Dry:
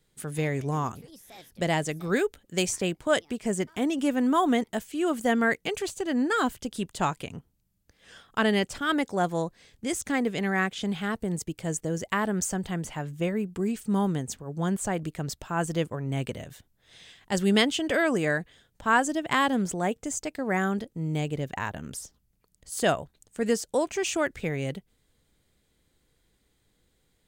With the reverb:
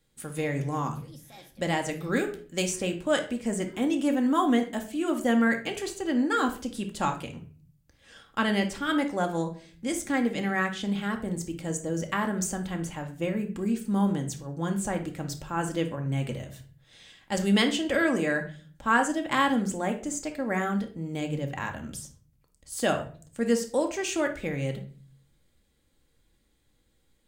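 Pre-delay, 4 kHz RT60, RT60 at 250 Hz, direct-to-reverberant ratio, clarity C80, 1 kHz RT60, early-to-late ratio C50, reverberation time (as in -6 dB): 4 ms, 0.30 s, 0.70 s, 3.5 dB, 15.5 dB, 0.35 s, 10.5 dB, 0.40 s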